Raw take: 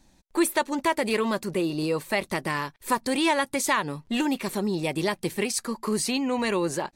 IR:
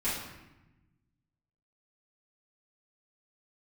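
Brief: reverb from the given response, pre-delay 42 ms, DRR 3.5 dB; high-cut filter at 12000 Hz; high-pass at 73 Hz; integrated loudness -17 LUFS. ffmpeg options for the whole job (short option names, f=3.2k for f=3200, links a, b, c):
-filter_complex "[0:a]highpass=73,lowpass=12k,asplit=2[a][b];[1:a]atrim=start_sample=2205,adelay=42[c];[b][c]afir=irnorm=-1:irlink=0,volume=-11.5dB[d];[a][d]amix=inputs=2:normalize=0,volume=8dB"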